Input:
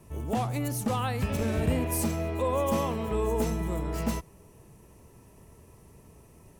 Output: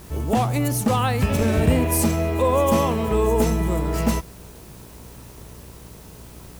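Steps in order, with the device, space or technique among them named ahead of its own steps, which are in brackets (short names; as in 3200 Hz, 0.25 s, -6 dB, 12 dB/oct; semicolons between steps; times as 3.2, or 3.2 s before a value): video cassette with head-switching buzz (buzz 60 Hz, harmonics 27, -53 dBFS -6 dB/oct; white noise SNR 28 dB); gain +8.5 dB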